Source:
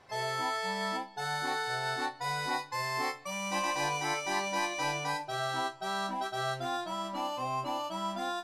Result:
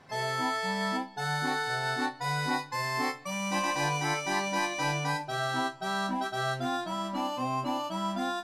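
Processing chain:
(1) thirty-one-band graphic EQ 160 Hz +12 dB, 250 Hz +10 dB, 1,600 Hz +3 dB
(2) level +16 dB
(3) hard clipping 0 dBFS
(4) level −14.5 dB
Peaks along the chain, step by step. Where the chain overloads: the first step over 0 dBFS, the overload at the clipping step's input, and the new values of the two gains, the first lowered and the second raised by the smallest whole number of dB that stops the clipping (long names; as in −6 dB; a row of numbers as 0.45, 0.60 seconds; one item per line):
−18.0, −2.0, −2.0, −16.5 dBFS
no step passes full scale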